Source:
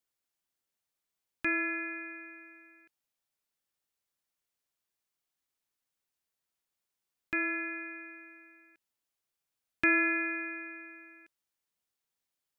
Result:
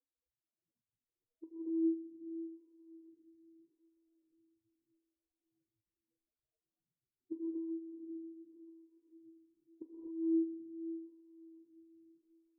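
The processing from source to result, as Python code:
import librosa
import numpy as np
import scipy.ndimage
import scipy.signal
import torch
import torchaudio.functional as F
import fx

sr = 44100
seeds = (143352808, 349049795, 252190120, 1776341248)

y = scipy.signal.medfilt(x, 41)
y = fx.dereverb_blind(y, sr, rt60_s=0.7)
y = fx.spec_topn(y, sr, count=1)
y = fx.over_compress(y, sr, threshold_db=-49.0, ratio=-0.5)
y = fx.low_shelf(y, sr, hz=330.0, db=11.0)
y = fx.rev_gated(y, sr, seeds[0], gate_ms=280, shape='rising', drr_db=-6.0)
y = fx.dereverb_blind(y, sr, rt60_s=1.5)
y = fx.graphic_eq(y, sr, hz=(125, 500, 1000, 2000), db=(10, 11, 6, -10))
y = fx.echo_diffused(y, sr, ms=607, feedback_pct=42, wet_db=-13)
y = fx.stagger_phaser(y, sr, hz=0.82)
y = y * librosa.db_to_amplitude(2.0)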